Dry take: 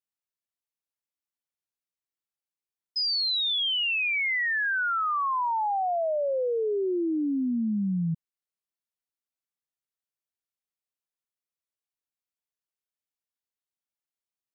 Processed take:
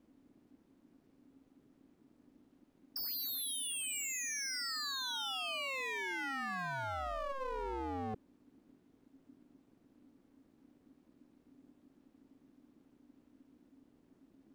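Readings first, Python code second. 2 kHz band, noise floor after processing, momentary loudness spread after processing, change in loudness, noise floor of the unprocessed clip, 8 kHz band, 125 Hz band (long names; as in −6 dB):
−12.5 dB, −71 dBFS, 4 LU, −11.5 dB, below −85 dBFS, can't be measured, −14.5 dB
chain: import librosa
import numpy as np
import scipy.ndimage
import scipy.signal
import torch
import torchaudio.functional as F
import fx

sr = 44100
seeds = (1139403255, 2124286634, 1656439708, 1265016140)

y = 10.0 ** (-30.0 / 20.0) * (np.abs((x / 10.0 ** (-30.0 / 20.0) + 3.0) % 4.0 - 2.0) - 1.0)
y = fx.dmg_noise_colour(y, sr, seeds[0], colour='brown', level_db=-62.0)
y = y * np.sin(2.0 * np.pi * 270.0 * np.arange(len(y)) / sr)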